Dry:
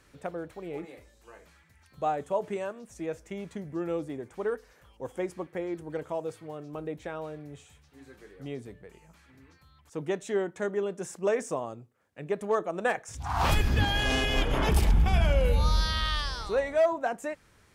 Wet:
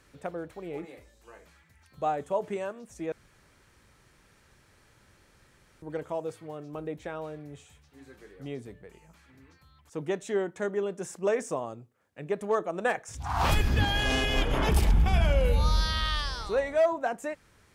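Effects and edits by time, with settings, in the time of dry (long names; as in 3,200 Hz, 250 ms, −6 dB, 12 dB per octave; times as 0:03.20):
0:03.12–0:05.82: fill with room tone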